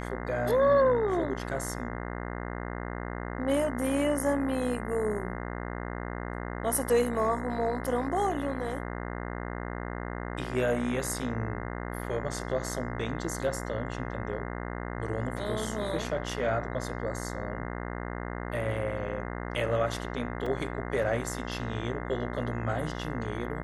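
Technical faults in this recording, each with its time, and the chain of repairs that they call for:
buzz 60 Hz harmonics 35 -36 dBFS
20.46 gap 3.9 ms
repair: de-hum 60 Hz, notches 35; interpolate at 20.46, 3.9 ms

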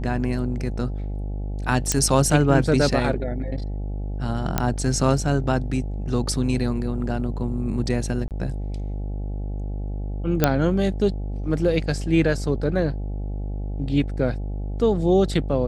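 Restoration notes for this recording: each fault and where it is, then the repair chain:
buzz 50 Hz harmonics 17 -28 dBFS
1.92 pop -5 dBFS
4.58 pop -6 dBFS
8.28–8.31 gap 28 ms
10.44 pop -2 dBFS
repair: de-click; de-hum 50 Hz, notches 17; interpolate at 8.28, 28 ms

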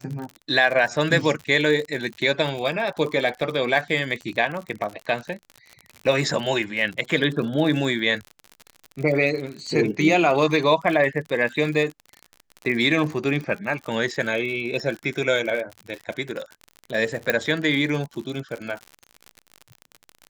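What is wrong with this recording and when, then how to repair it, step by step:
crackle 54/s -29 dBFS
17.3 pop -6 dBFS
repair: de-click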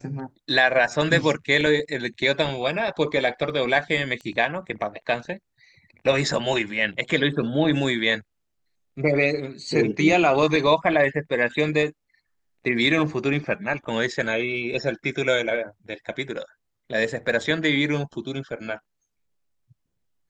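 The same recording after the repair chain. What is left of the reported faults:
17.3 pop

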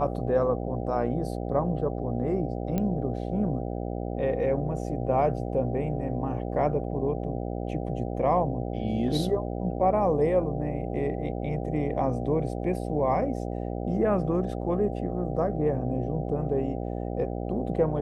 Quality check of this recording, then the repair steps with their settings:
buzz 60 Hz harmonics 13 -32 dBFS
2.78 pop -16 dBFS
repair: de-click; de-hum 60 Hz, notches 13

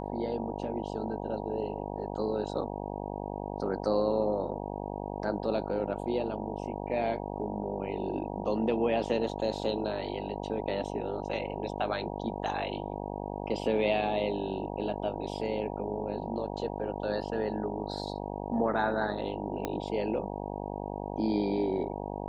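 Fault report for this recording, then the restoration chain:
buzz 50 Hz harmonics 19 -37 dBFS
19.65 pop -17 dBFS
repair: de-click; de-hum 50 Hz, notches 19

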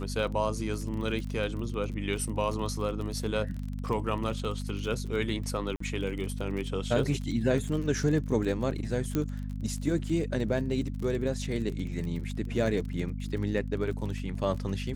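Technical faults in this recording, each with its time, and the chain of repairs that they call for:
crackle 39/s -35 dBFS
hum 50 Hz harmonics 5 -35 dBFS
5.76–5.8 gap 44 ms
9.15 pop -15 dBFS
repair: de-click; de-hum 50 Hz, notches 5; interpolate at 5.76, 44 ms

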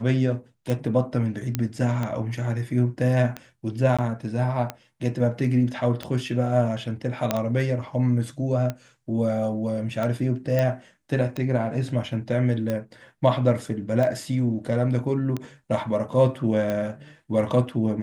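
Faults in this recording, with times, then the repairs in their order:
tick 45 rpm -15 dBFS
1.55 pop -10 dBFS
3.97–3.99 gap 16 ms
7.31 pop -7 dBFS
10.59 pop -12 dBFS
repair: de-click; interpolate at 3.97, 16 ms

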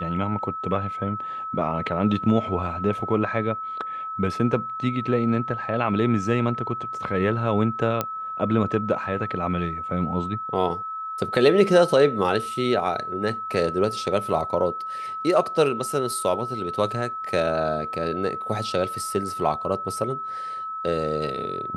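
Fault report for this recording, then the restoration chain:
tone 1300 Hz -29 dBFS
8.01 pop -9 dBFS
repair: de-click; notch 1300 Hz, Q 30

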